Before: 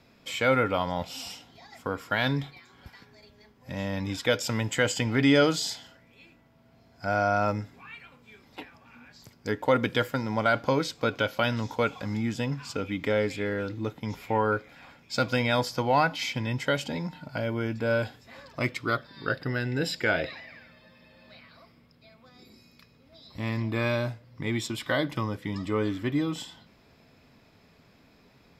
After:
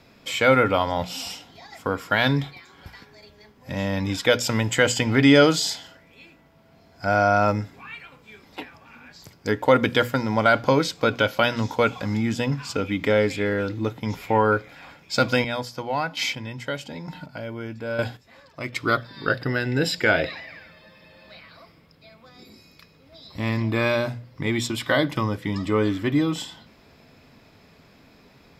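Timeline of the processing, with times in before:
15.26–18.73 s: square tremolo 1.1 Hz, depth 65%, duty 20%
whole clip: hum notches 60/120/180/240 Hz; trim +6 dB

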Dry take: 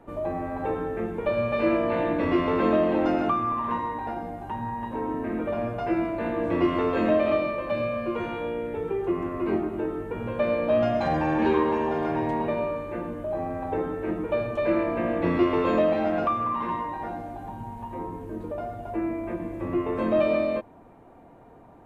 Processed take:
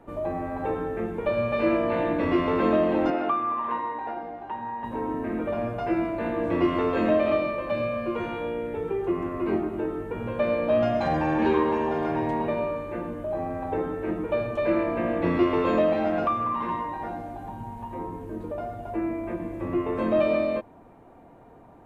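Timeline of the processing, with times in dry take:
3.10–4.84 s: three-band isolator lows -15 dB, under 280 Hz, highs -21 dB, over 4.4 kHz

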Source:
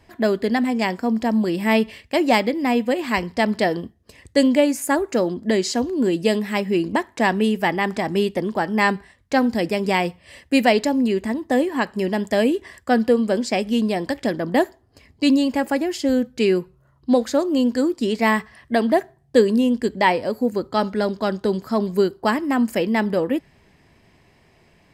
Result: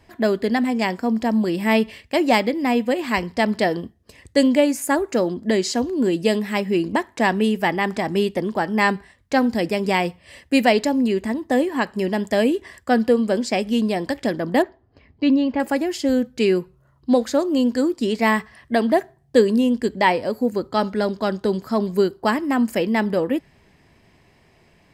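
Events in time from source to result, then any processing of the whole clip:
14.62–15.60 s: distance through air 280 m

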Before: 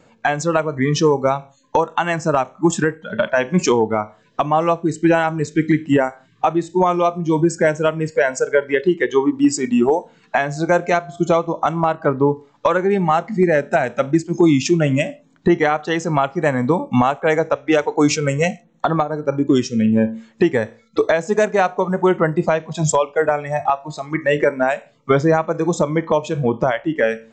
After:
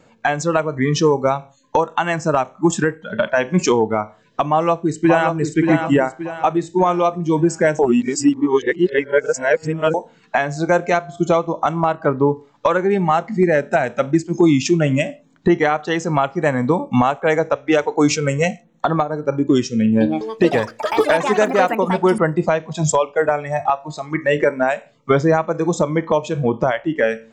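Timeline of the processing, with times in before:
4.46–5.41 s: echo throw 580 ms, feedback 40%, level -5.5 dB
7.79–9.94 s: reverse
19.80–22.88 s: ever faster or slower copies 204 ms, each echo +6 st, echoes 3, each echo -6 dB

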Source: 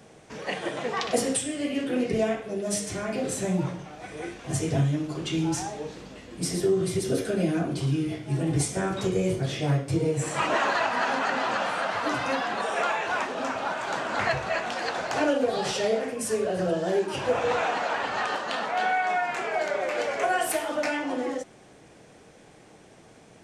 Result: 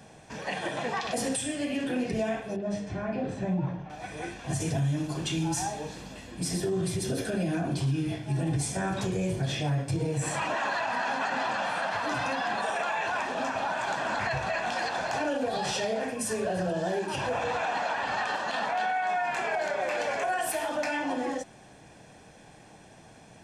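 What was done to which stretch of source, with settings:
2.56–3.90 s: tape spacing loss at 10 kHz 31 dB
4.60–6.31 s: treble shelf 8.5 kHz +10 dB
whole clip: comb 1.2 ms, depth 41%; peak limiter -21 dBFS

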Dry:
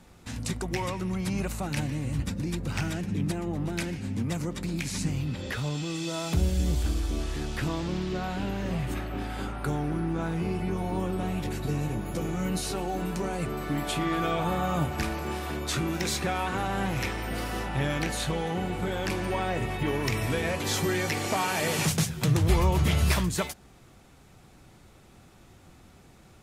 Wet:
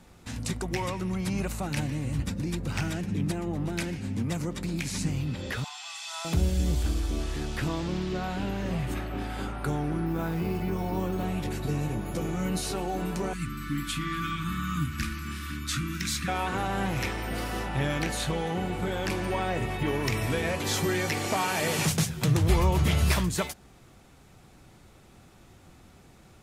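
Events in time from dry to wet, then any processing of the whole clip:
5.64–6.25 s: brick-wall FIR band-pass 670–13000 Hz
10.06–11.25 s: careless resampling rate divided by 3×, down none, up hold
13.33–16.28 s: elliptic band-stop 290–1200 Hz

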